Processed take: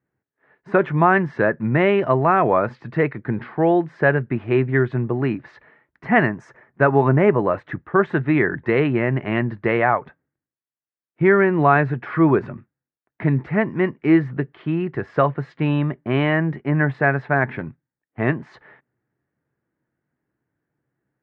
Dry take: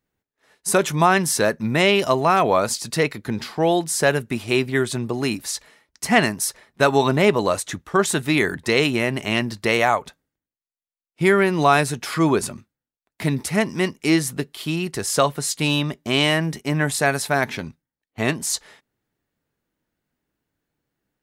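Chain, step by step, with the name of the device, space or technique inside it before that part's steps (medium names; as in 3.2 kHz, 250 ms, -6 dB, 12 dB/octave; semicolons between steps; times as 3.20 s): bass cabinet (cabinet simulation 73–2000 Hz, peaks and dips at 130 Hz +8 dB, 340 Hz +4 dB, 1.7 kHz +4 dB); 6.27–7.53 s: resonant high shelf 5.3 kHz +8.5 dB, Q 3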